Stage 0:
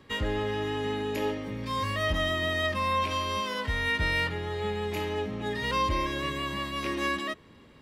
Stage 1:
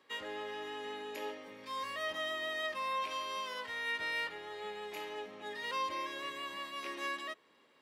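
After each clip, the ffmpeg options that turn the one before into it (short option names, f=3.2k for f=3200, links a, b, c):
-af "highpass=470,volume=-8dB"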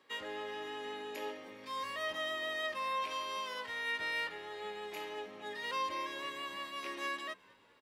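-filter_complex "[0:a]asplit=4[a][b][c][d];[b]adelay=204,afreqshift=-82,volume=-24dB[e];[c]adelay=408,afreqshift=-164,volume=-30.6dB[f];[d]adelay=612,afreqshift=-246,volume=-37.1dB[g];[a][e][f][g]amix=inputs=4:normalize=0"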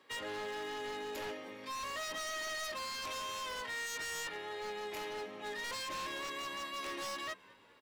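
-af "aeval=exprs='0.0126*(abs(mod(val(0)/0.0126+3,4)-2)-1)':c=same,volume=2.5dB"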